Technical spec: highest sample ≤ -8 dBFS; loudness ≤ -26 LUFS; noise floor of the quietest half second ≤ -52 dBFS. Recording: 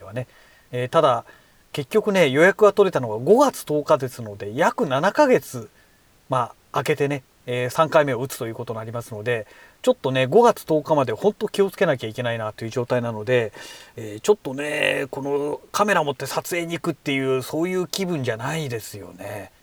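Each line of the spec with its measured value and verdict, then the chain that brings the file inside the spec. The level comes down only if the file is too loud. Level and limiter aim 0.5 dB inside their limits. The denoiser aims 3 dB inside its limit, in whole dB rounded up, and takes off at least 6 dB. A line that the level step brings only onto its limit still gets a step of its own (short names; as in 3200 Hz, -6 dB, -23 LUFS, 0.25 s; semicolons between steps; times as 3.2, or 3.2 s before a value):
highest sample -4.0 dBFS: fail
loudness -21.5 LUFS: fail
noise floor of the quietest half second -56 dBFS: OK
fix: gain -5 dB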